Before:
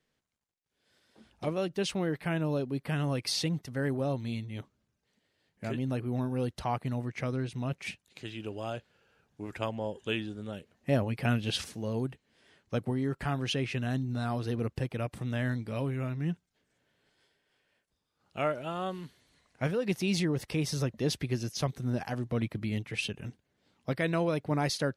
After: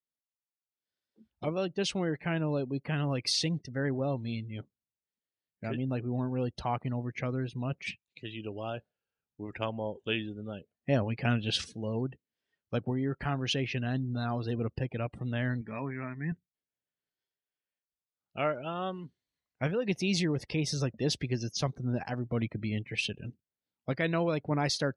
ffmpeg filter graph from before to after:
ffmpeg -i in.wav -filter_complex "[0:a]asettb=1/sr,asplit=3[link_01][link_02][link_03];[link_01]atrim=end=15.614[link_04];[link_02]atrim=start=15.61:end=16.32,asetpts=PTS-STARTPTS,afade=type=in:duration=0.004:curve=qsin,afade=type=out:start_time=0.706:duration=0.004:curve=qsin,asuperstop=centerf=2900:order=8:qfactor=5.6,highpass=100,equalizer=frequency=120:width_type=q:width=4:gain=-9,equalizer=frequency=330:width_type=q:width=4:gain=-5,equalizer=frequency=520:width_type=q:width=4:gain=-8,equalizer=frequency=1000:width_type=q:width=4:gain=4,equalizer=frequency=1800:width_type=q:width=4:gain=9,equalizer=frequency=4300:width_type=q:width=4:gain=-10,lowpass=frequency=7800:width=0.5412,lowpass=frequency=7800:width=1.3066[link_05];[link_03]atrim=start=16.316[link_06];[link_04][link_05]acrossfade=duration=0.004:curve1=hsin:curve2=qsin[link_07];[link_07][link_06]acrossfade=duration=0.004:curve1=qsin:curve2=hsin,afftdn=noise_reduction=25:noise_floor=-48,lowpass=6100,aemphasis=mode=production:type=cd" out.wav

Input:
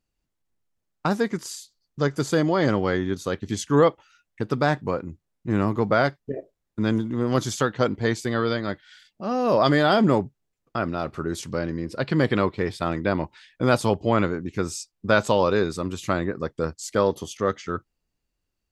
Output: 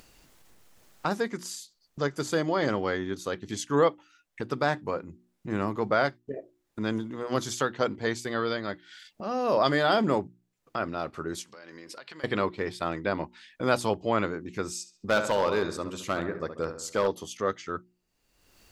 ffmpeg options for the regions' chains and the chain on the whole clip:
ffmpeg -i in.wav -filter_complex "[0:a]asettb=1/sr,asplit=3[link_01][link_02][link_03];[link_01]atrim=end=11.424[link_04];[link_02]atrim=start=11.42:end=12.24,asetpts=PTS-STARTPTS,afade=type=in:duration=0.004:curve=qsin,afade=type=out:start_time=0.816:duration=0.004:curve=qsin,highpass=frequency=1300:poles=1,acompressor=threshold=-44dB:ratio=12:attack=3.2:release=140:knee=1:detection=peak[link_05];[link_03]atrim=start=12.236[link_06];[link_04][link_05]acrossfade=duration=0.004:curve1=hsin:curve2=qsin[link_07];[link_07][link_06]acrossfade=duration=0.004:curve1=qsin:curve2=hsin,asettb=1/sr,asplit=3[link_08][link_09][link_10];[link_08]atrim=end=14.744[link_11];[link_09]atrim=start=14.74:end=17.08,asetpts=PTS-STARTPTS,afade=type=in:duration=0.004:curve=qsin,afade=type=out:start_time=2.336:duration=0.004:curve=qsin,asplit=2[link_12][link_13];[link_13]adelay=70,lowpass=frequency=2900:poles=1,volume=-9.5dB,asplit=2[link_14][link_15];[link_15]adelay=70,lowpass=frequency=2900:poles=1,volume=0.49,asplit=2[link_16][link_17];[link_17]adelay=70,lowpass=frequency=2900:poles=1,volume=0.49,asplit=2[link_18][link_19];[link_19]adelay=70,lowpass=frequency=2900:poles=1,volume=0.49,asplit=2[link_20][link_21];[link_21]adelay=70,lowpass=frequency=2900:poles=1,volume=0.49[link_22];[link_12][link_14][link_16][link_18][link_20][link_22]amix=inputs=6:normalize=0,atrim=end_sample=103194,volume=13.5dB,asoftclip=hard,volume=-13.5dB[link_23];[link_10]atrim=start=17.076[link_24];[link_11][link_23]acrossfade=duration=0.004:curve1=hsin:curve2=qsin[link_25];[link_25][link_24]acrossfade=duration=0.004:curve1=qsin:curve2=hsin,lowshelf=frequency=220:gain=-8.5,bandreject=frequency=60:width_type=h:width=6,bandreject=frequency=120:width_type=h:width=6,bandreject=frequency=180:width_type=h:width=6,bandreject=frequency=240:width_type=h:width=6,bandreject=frequency=300:width_type=h:width=6,bandreject=frequency=360:width_type=h:width=6,acompressor=mode=upward:threshold=-31dB:ratio=2.5,volume=-3dB" out.wav

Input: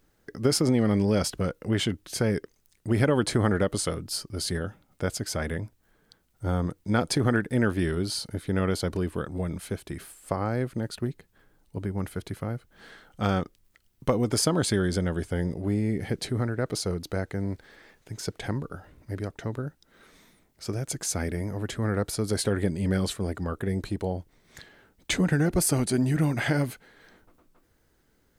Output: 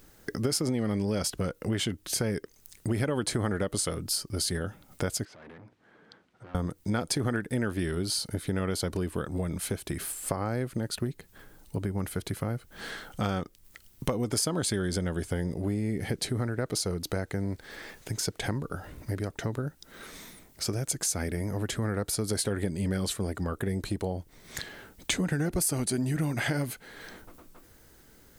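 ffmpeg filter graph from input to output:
ffmpeg -i in.wav -filter_complex "[0:a]asettb=1/sr,asplit=3[link_01][link_02][link_03];[link_01]atrim=end=5.254[link_04];[link_02]atrim=start=5.25:end=6.55,asetpts=PTS-STARTPTS,afade=type=in:duration=0.004:curve=qsin,afade=type=out:start_time=1.296:duration=0.004:curve=qsin,volume=34.5dB,asoftclip=hard,volume=-34.5dB,highpass=180,lowpass=2500,acompressor=threshold=-54dB:ratio=8:attack=3.2:release=140:knee=1:detection=peak[link_05];[link_03]atrim=start=6.546[link_06];[link_04][link_05]acrossfade=duration=0.004:curve1=hsin:curve2=qsin[link_07];[link_07][link_06]acrossfade=duration=0.004:curve1=qsin:curve2=hsin,highshelf=frequency=5300:gain=7,acompressor=threshold=-40dB:ratio=3,volume=9dB" out.wav

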